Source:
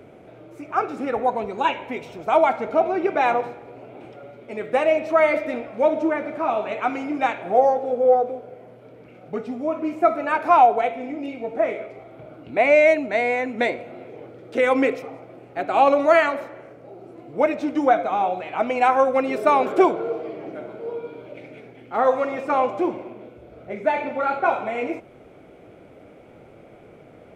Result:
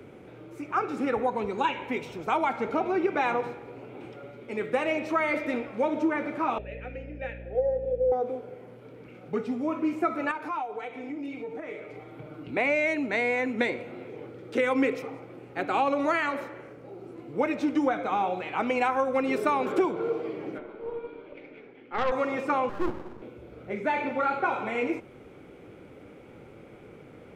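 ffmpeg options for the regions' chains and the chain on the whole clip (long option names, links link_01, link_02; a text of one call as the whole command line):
ffmpeg -i in.wav -filter_complex "[0:a]asettb=1/sr,asplit=3[link_01][link_02][link_03];[link_01]atrim=end=6.584[link_04];[link_02]atrim=start=6.58:end=8.12,asetpts=PTS-STARTPTS,afade=type=in:duration=0.004:curve=qsin,afade=type=out:start_time=1.536:duration=0.004:curve=qsin,asplit=3[link_05][link_06][link_07];[link_05]bandpass=frequency=530:width_type=q:width=8,volume=0dB[link_08];[link_06]bandpass=frequency=1840:width_type=q:width=8,volume=-6dB[link_09];[link_07]bandpass=frequency=2480:width_type=q:width=8,volume=-9dB[link_10];[link_08][link_09][link_10]amix=inputs=3:normalize=0,aeval=exprs='val(0)+0.00891*(sin(2*PI*60*n/s)+sin(2*PI*2*60*n/s)/2+sin(2*PI*3*60*n/s)/3+sin(2*PI*4*60*n/s)/4+sin(2*PI*5*60*n/s)/5)':channel_layout=same[link_11];[link_03]atrim=start=8.116[link_12];[link_04][link_11]acrossfade=duration=0.004:curve1=hsin:curve2=qsin[link_13];[link_13][link_12]acrossfade=duration=0.004:curve1=qsin:curve2=hsin,asettb=1/sr,asplit=3[link_14][link_15][link_16];[link_14]atrim=end=10.314[link_17];[link_15]atrim=start=10.31:end=12.51,asetpts=PTS-STARTPTS,afade=type=in:duration=0.004:curve=qsin,afade=type=out:start_time=2.196:duration=0.004:curve=qsin,aecho=1:1:6.6:0.49,atrim=end_sample=97020,acompressor=threshold=-35dB:ratio=2.5:attack=3.2:release=140:knee=1:detection=peak[link_18];[link_16]atrim=start=12.506[link_19];[link_17][link_18]acrossfade=duration=0.004:curve1=hsin:curve2=qsin[link_20];[link_20][link_19]acrossfade=duration=0.004:curve1=qsin:curve2=hsin,asettb=1/sr,asplit=3[link_21][link_22][link_23];[link_21]atrim=end=20.584[link_24];[link_22]atrim=start=20.58:end=22.12,asetpts=PTS-STARTPTS,afade=type=in:duration=0.004:curve=qsin,afade=type=out:start_time=1.536:duration=0.004:curve=qsin,highpass=240,lowpass=3200,aeval=exprs='(tanh(7.94*val(0)+0.65)-tanh(0.65))/7.94':channel_layout=same[link_25];[link_23]atrim=start=22.116[link_26];[link_24][link_25]acrossfade=duration=0.004:curve1=hsin:curve2=qsin[link_27];[link_27][link_26]acrossfade=duration=0.004:curve1=qsin:curve2=hsin,asettb=1/sr,asplit=3[link_28][link_29][link_30];[link_28]atrim=end=22.694[link_31];[link_29]atrim=start=22.69:end=23.22,asetpts=PTS-STARTPTS,afade=type=in:duration=0.004:curve=qsin,afade=type=out:start_time=0.526:duration=0.004:curve=qsin,lowpass=1400,aeval=exprs='max(val(0),0)':channel_layout=same[link_32];[link_30]atrim=start=23.216[link_33];[link_31][link_32]acrossfade=duration=0.004:curve1=hsin:curve2=qsin[link_34];[link_34][link_33]acrossfade=duration=0.004:curve1=qsin:curve2=hsin,equalizer=frequency=660:width=4.7:gain=-12,acrossover=split=190[link_35][link_36];[link_36]acompressor=threshold=-22dB:ratio=6[link_37];[link_35][link_37]amix=inputs=2:normalize=0" out.wav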